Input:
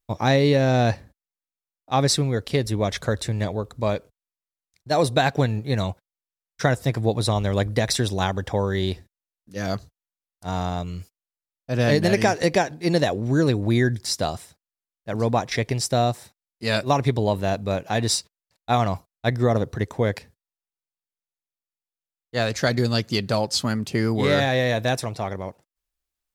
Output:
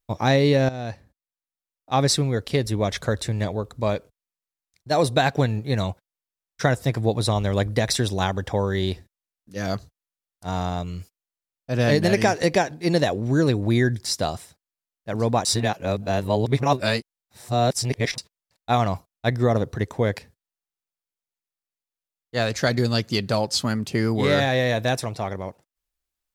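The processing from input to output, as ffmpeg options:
ffmpeg -i in.wav -filter_complex "[0:a]asplit=4[link_01][link_02][link_03][link_04];[link_01]atrim=end=0.69,asetpts=PTS-STARTPTS,afade=type=out:start_time=0.686:duration=0.004:curve=hsin:silence=0.16788[link_05];[link_02]atrim=start=0.69:end=15.452,asetpts=PTS-STARTPTS,afade=type=in:duration=1.24:silence=0.16788[link_06];[link_03]atrim=start=15.448:end=18.182,asetpts=PTS-STARTPTS,areverse[link_07];[link_04]atrim=start=18.178[link_08];[link_05][link_06]concat=n=2:v=0:a=1[link_09];[link_09][link_07]acrossfade=duration=0.004:curve1=hsin:curve2=hsin[link_10];[link_10][link_08]acrossfade=duration=0.004:curve1=hsin:curve2=hsin" out.wav

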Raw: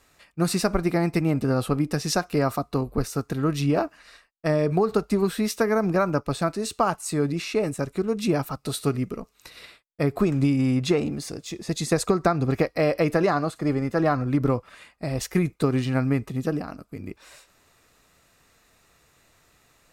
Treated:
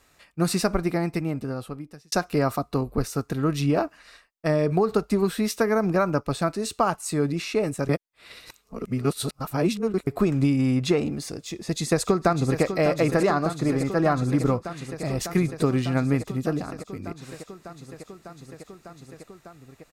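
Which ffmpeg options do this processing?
ffmpeg -i in.wav -filter_complex "[0:a]asplit=2[link_01][link_02];[link_02]afade=type=in:start_time=11.44:duration=0.01,afade=type=out:start_time=12.63:duration=0.01,aecho=0:1:600|1200|1800|2400|3000|3600|4200|4800|5400|6000|6600|7200:0.334965|0.284721|0.242013|0.205711|0.174854|0.148626|0.126332|0.107382|0.0912749|0.0775837|0.0659461|0.0560542[link_03];[link_01][link_03]amix=inputs=2:normalize=0,asplit=4[link_04][link_05][link_06][link_07];[link_04]atrim=end=2.12,asetpts=PTS-STARTPTS,afade=type=out:start_time=0.63:duration=1.49[link_08];[link_05]atrim=start=2.12:end=7.892,asetpts=PTS-STARTPTS,afade=type=in:duration=0.004:curve=hsin[link_09];[link_06]atrim=start=7.888:end=10.072,asetpts=PTS-STARTPTS,areverse[link_10];[link_07]atrim=start=10.068[link_11];[link_08][link_09]concat=n=2:v=0:a=1[link_12];[link_12][link_10]acrossfade=duration=0.004:curve1=hsin:curve2=hsin[link_13];[link_13][link_11]acrossfade=duration=0.004:curve1=hsin:curve2=hsin" out.wav

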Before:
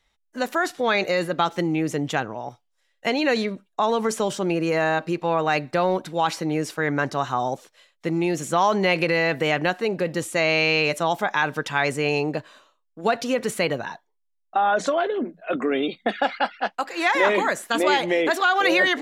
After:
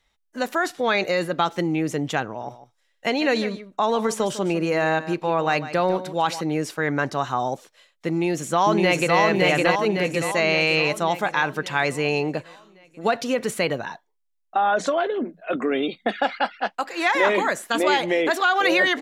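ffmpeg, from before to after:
ffmpeg -i in.wav -filter_complex "[0:a]asettb=1/sr,asplit=3[link_01][link_02][link_03];[link_01]atrim=end=2.264[link_04];[link_02]atrim=start=2.26:end=6.41,asetpts=PTS-STARTPTS,afade=type=in:duration=0.004:curve=qsin,afade=type=out:start_time=4.146:duration=0.004:curve=qsin,aecho=1:1:151:0.211,atrim=end_sample=183015[link_05];[link_03]atrim=start=6.406[link_06];[link_04][link_05]acrossfade=duration=0.004:curve1=hsin:curve2=qsin[link_07];[link_07][link_06]acrossfade=duration=0.004:curve1=qsin:curve2=hsin,asplit=2[link_08][link_09];[link_09]afade=type=in:start_time=8.1:duration=0.01,afade=type=out:start_time=9.19:duration=0.01,aecho=0:1:560|1120|1680|2240|2800|3360|3920|4480:0.891251|0.490188|0.269603|0.148282|0.081555|0.0448553|0.0246704|0.0135687[link_10];[link_08][link_10]amix=inputs=2:normalize=0" out.wav

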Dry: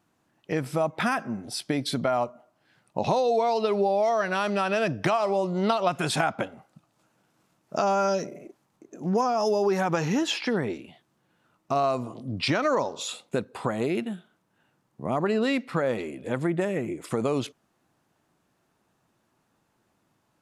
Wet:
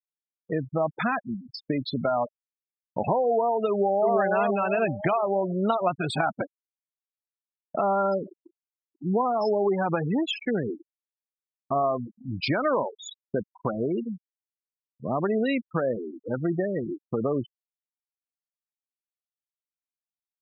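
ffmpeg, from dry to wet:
ffmpeg -i in.wav -filter_complex "[0:a]asplit=2[link_01][link_02];[link_02]afade=type=in:start_time=3.68:duration=0.01,afade=type=out:start_time=4.16:duration=0.01,aecho=0:1:340|680|1020|1360|1700|2040|2380:0.749894|0.374947|0.187474|0.0937368|0.0468684|0.0234342|0.0117171[link_03];[link_01][link_03]amix=inputs=2:normalize=0,afftfilt=real='re*gte(hypot(re,im),0.0794)':imag='im*gte(hypot(re,im),0.0794)':win_size=1024:overlap=0.75,agate=range=-33dB:threshold=-43dB:ratio=3:detection=peak" out.wav

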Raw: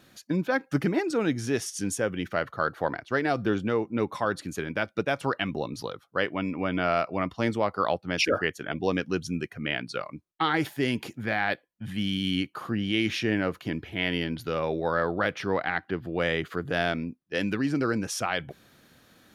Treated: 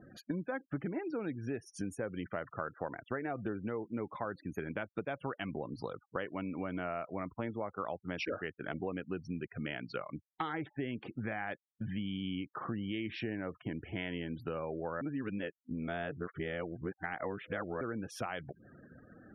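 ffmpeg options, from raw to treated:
ffmpeg -i in.wav -filter_complex "[0:a]asplit=3[link_01][link_02][link_03];[link_01]atrim=end=15.012[link_04];[link_02]atrim=start=15.008:end=17.812,asetpts=PTS-STARTPTS,areverse[link_05];[link_03]atrim=start=17.808[link_06];[link_04][link_05]acrossfade=duration=0.004:curve1=hsin:curve2=hsin[link_07];[link_07][link_06]acrossfade=duration=0.004:curve1=hsin:curve2=hsin,equalizer=frequency=6800:width=0.65:gain=-14,acompressor=threshold=-41dB:ratio=5,afftfilt=real='re*gte(hypot(re,im),0.002)':imag='im*gte(hypot(re,im),0.002)':win_size=1024:overlap=0.75,volume=4.5dB" out.wav

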